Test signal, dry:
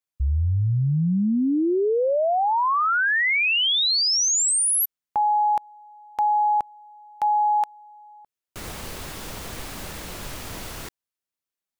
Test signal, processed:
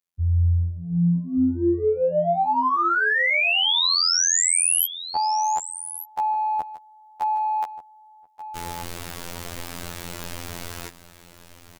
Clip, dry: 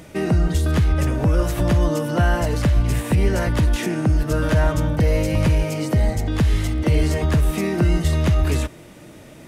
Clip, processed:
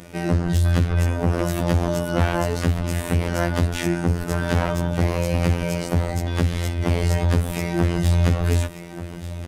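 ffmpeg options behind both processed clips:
-af "aeval=exprs='0.398*(cos(1*acos(clip(val(0)/0.398,-1,1)))-cos(1*PI/2))+0.158*(cos(5*acos(clip(val(0)/0.398,-1,1)))-cos(5*PI/2))+0.0631*(cos(7*acos(clip(val(0)/0.398,-1,1)))-cos(7*PI/2))':c=same,aecho=1:1:1184:0.211,afftfilt=real='hypot(re,im)*cos(PI*b)':imag='0':win_size=2048:overlap=0.75,volume=-2dB"

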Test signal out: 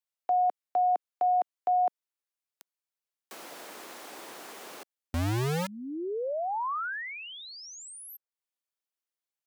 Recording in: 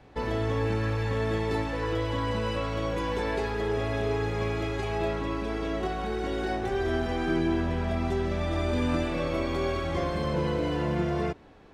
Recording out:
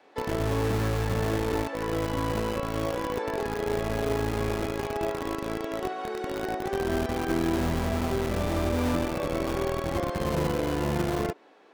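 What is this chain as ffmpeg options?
-filter_complex "[0:a]acrossover=split=280|830|1500[a][b][c][d];[a]acrusher=bits=4:mix=0:aa=0.000001[e];[d]acompressor=threshold=-46dB:ratio=6[f];[e][b][c][f]amix=inputs=4:normalize=0"

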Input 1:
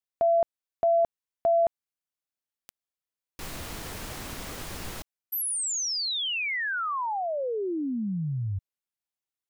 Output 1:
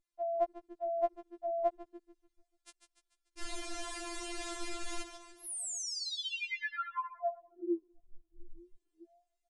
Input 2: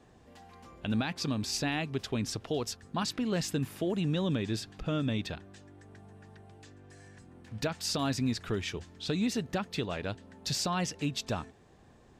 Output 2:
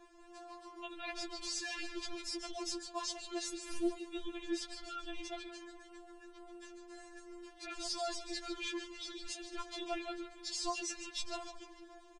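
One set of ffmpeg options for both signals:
-filter_complex "[0:a]areverse,acompressor=threshold=-42dB:ratio=8:attack=54:release=88:knee=6:detection=peak,areverse,aresample=22050,aresample=44100,aeval=exprs='val(0)+0.000224*(sin(2*PI*50*n/s)+sin(2*PI*2*50*n/s)/2+sin(2*PI*3*50*n/s)/3+sin(2*PI*4*50*n/s)/4+sin(2*PI*5*50*n/s)/5)':c=same,asplit=7[a][b][c][d][e][f][g];[b]adelay=146,afreqshift=-140,volume=-8.5dB[h];[c]adelay=292,afreqshift=-280,volume=-14.3dB[i];[d]adelay=438,afreqshift=-420,volume=-20.2dB[j];[e]adelay=584,afreqshift=-560,volume=-26dB[k];[f]adelay=730,afreqshift=-700,volume=-31.9dB[l];[g]adelay=876,afreqshift=-840,volume=-37.7dB[m];[a][h][i][j][k][l][m]amix=inputs=7:normalize=0,afftfilt=real='re*4*eq(mod(b,16),0)':imag='im*4*eq(mod(b,16),0)':win_size=2048:overlap=0.75,volume=3dB"

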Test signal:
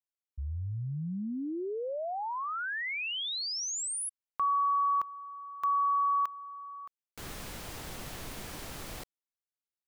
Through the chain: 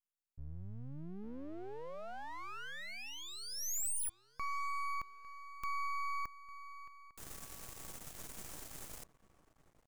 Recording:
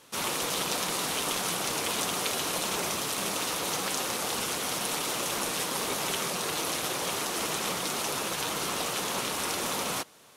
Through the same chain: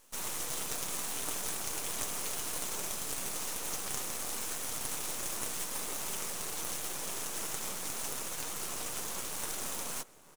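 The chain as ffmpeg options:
-filter_complex "[0:a]highshelf=f=5.4k:t=q:w=1.5:g=7,asplit=2[a][b];[b]adelay=852,lowpass=f=1.3k:p=1,volume=-16dB,asplit=2[c][d];[d]adelay=852,lowpass=f=1.3k:p=1,volume=0.45,asplit=2[e][f];[f]adelay=852,lowpass=f=1.3k:p=1,volume=0.45,asplit=2[g][h];[h]adelay=852,lowpass=f=1.3k:p=1,volume=0.45[i];[a][c][e][g][i]amix=inputs=5:normalize=0,aeval=exprs='max(val(0),0)':c=same,volume=-6.5dB"

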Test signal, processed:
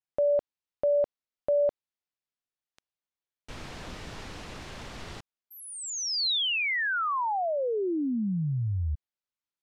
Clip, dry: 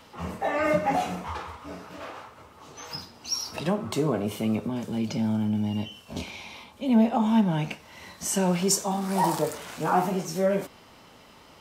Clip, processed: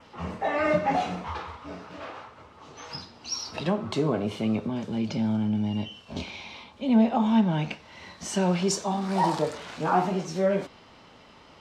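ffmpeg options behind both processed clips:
-af "lowpass=5.2k,adynamicequalizer=threshold=0.00355:dfrequency=4000:dqfactor=2.5:tfrequency=4000:tqfactor=2.5:attack=5:release=100:ratio=0.375:range=1.5:mode=boostabove:tftype=bell"

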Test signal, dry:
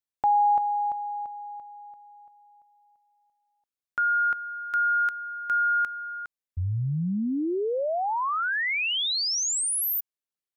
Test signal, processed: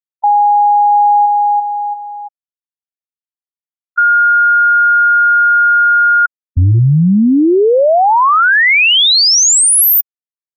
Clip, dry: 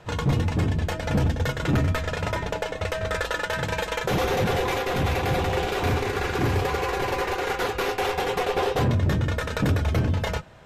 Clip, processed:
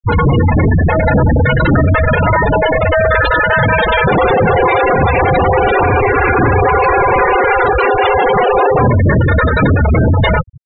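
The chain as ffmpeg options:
-af "apsyclip=33dB,afftfilt=real='re*gte(hypot(re,im),1.41)':imag='im*gte(hypot(re,im),1.41)':win_size=1024:overlap=0.75,volume=-6dB"

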